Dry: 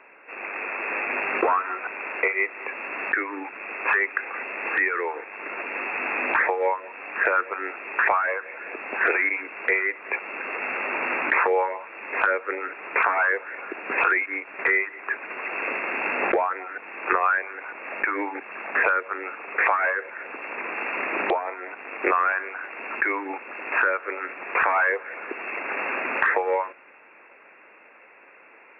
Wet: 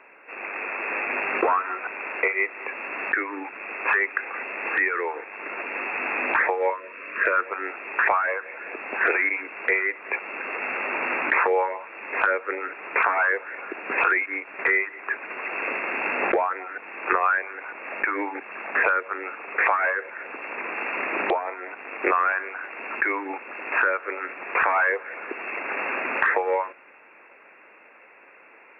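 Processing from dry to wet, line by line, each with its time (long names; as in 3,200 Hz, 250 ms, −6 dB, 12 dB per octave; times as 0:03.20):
0:06.70–0:07.39: Butterworth band-reject 800 Hz, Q 2.4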